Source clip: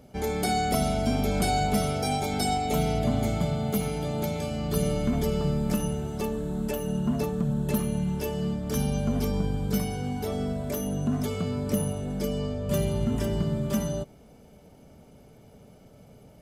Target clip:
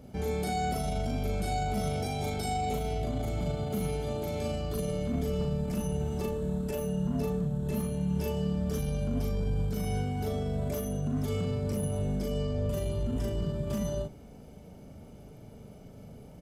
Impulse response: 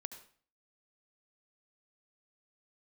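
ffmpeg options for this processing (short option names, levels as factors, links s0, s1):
-filter_complex "[0:a]lowshelf=f=340:g=6,alimiter=limit=0.0668:level=0:latency=1:release=33,asplit=2[s0][s1];[s1]adelay=39,volume=0.75[s2];[s0][s2]amix=inputs=2:normalize=0,volume=0.75"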